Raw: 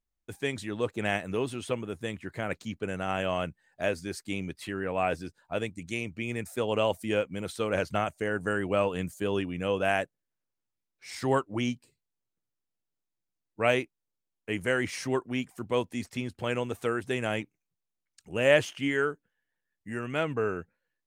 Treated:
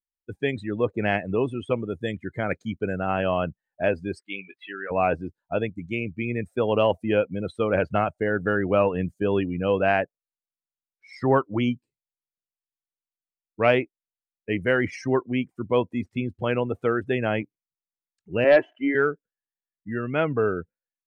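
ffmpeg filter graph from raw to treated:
ffmpeg -i in.wav -filter_complex "[0:a]asettb=1/sr,asplit=3[link_01][link_02][link_03];[link_01]atrim=end=1.724[link_04];[link_02]atrim=start=1.72:end=2.96,asetpts=PTS-STARTPTS,afade=type=in:duration=0.004:curve=qsin,afade=type=out:start_time=1.236:duration=0.004:curve=qsin,highshelf=frequency=3800:gain=8.5,bandreject=frequency=2700:width=11[link_05];[link_03]atrim=start=2.956[link_06];[link_04][link_05]acrossfade=duration=0.004:curve1=hsin:curve2=qsin[link_07];[link_07][link_06]acrossfade=duration=0.004:curve1=qsin:curve2=hsin,asettb=1/sr,asplit=3[link_08][link_09][link_10];[link_08]atrim=end=4.204[link_11];[link_09]atrim=start=4.2:end=4.91,asetpts=PTS-STARTPTS,afade=type=in:duration=0.004:curve=qsin,afade=type=out:start_time=0.706:duration=0.004:curve=qsin,highpass=frequency=1200:poles=1,highshelf=frequency=4500:width_type=q:width=1.5:gain=-10.5,asplit=2[link_12][link_13];[link_13]adelay=20,volume=-7.5dB[link_14];[link_12][link_14]amix=inputs=2:normalize=0,atrim=end_sample=31311[link_15];[link_10]atrim=start=4.906[link_16];[link_11][link_15]acrossfade=duration=0.004:curve1=hsin:curve2=qsin[link_17];[link_17][link_16]acrossfade=duration=0.004:curve1=qsin:curve2=hsin,asettb=1/sr,asplit=3[link_18][link_19][link_20];[link_18]atrim=end=18.444[link_21];[link_19]atrim=start=18.44:end=18.95,asetpts=PTS-STARTPTS,afade=type=in:duration=0.004:curve=qsin,afade=type=out:start_time=0.506:duration=0.004:curve=qsin,acrossover=split=220 2500:gain=0.0891 1 0.112[link_22][link_23][link_24];[link_22][link_23][link_24]amix=inputs=3:normalize=0,aecho=1:1:3:0.4,atrim=end_sample=22491,aeval=exprs='0.224*(abs(mod(val(0)/0.224+3,4)-2)-1)':channel_layout=same[link_25];[link_20]atrim=start=18.946[link_26];[link_21][link_25]acrossfade=duration=0.004:curve1=hsin:curve2=qsin[link_27];[link_27][link_26]acrossfade=duration=0.004:curve1=qsin:curve2=hsin,afftdn=noise_reduction=24:noise_floor=-37,acontrast=62,highshelf=frequency=3700:gain=-8.5" out.wav

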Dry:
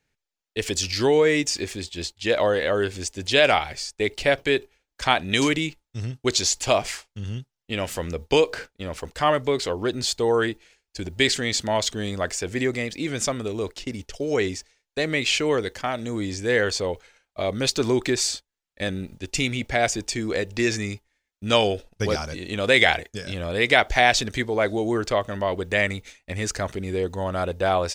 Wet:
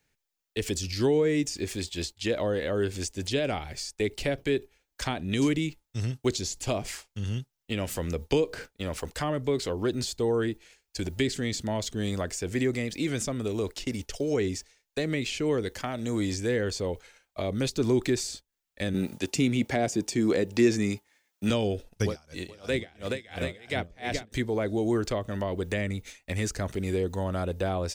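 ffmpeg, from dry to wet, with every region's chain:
ffmpeg -i in.wav -filter_complex "[0:a]asettb=1/sr,asplit=3[link_01][link_02][link_03];[link_01]atrim=end=18.944[link_04];[link_02]atrim=start=18.94:end=21.5,asetpts=PTS-STARTPTS,afade=type=in:duration=0.004:curve=qsin,afade=type=out:start_time=2.556:duration=0.004:curve=qsin,highpass=160,equalizer=frequency=910:width=1.5:gain=3.5,acontrast=45[link_05];[link_03]atrim=start=21.496[link_06];[link_04][link_05]acrossfade=duration=0.004:curve1=hsin:curve2=qsin[link_07];[link_07][link_06]acrossfade=duration=0.004:curve1=qsin:curve2=hsin,asettb=1/sr,asplit=3[link_08][link_09][link_10];[link_08]atrim=end=22.064[link_11];[link_09]atrim=start=22.06:end=24.32,asetpts=PTS-STARTPTS,afade=type=in:duration=0.004:curve=qsin,afade=type=out:start_time=2.256:duration=0.004:curve=qsin,aecho=1:1:426|730:0.708|0.355,atrim=end_sample=99666,aeval=exprs='val(0)*pow(10,-30*(0.5-0.5*cos(2*PI*2.9*n/s))/20)':channel_layout=same[link_12];[link_10]atrim=start=24.316[link_13];[link_11][link_12]acrossfade=duration=0.004:curve1=hsin:curve2=qsin[link_14];[link_14][link_13]acrossfade=duration=0.004:curve1=qsin:curve2=hsin,highshelf=frequency=9800:gain=10.5,acrossover=split=390[link_15][link_16];[link_16]acompressor=threshold=-33dB:ratio=5[link_17];[link_15][link_17]amix=inputs=2:normalize=0" out.wav

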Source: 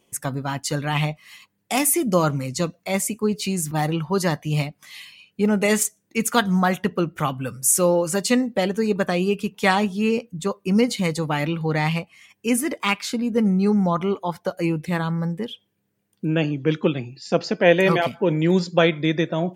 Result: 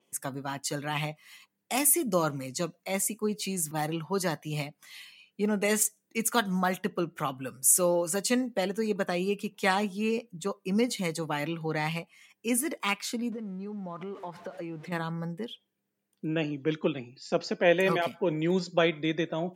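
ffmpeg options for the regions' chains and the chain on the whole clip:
ffmpeg -i in.wav -filter_complex "[0:a]asettb=1/sr,asplit=3[link_01][link_02][link_03];[link_01]atrim=end=13.324[link_04];[link_02]atrim=start=13.32:end=14.92,asetpts=PTS-STARTPTS,afade=type=in:duration=0.004:curve=qsin,afade=type=out:start_time=1.596:duration=0.004:curve=qsin,aeval=exprs='val(0)+0.5*0.0158*sgn(val(0))':channel_layout=same,aemphasis=mode=reproduction:type=75fm,acompressor=threshold=-26dB:ratio=12:attack=3.2:release=140:knee=1:detection=peak[link_05];[link_03]atrim=start=14.916[link_06];[link_04][link_05]acrossfade=duration=0.004:curve1=hsin:curve2=qsin[link_07];[link_07][link_06]acrossfade=duration=0.004:curve1=qsin:curve2=hsin,highpass=180,adynamicequalizer=threshold=0.0141:dfrequency=7000:dqfactor=0.7:tfrequency=7000:tqfactor=0.7:attack=5:release=100:ratio=0.375:range=2.5:mode=boostabove:tftype=highshelf,volume=-7dB" out.wav

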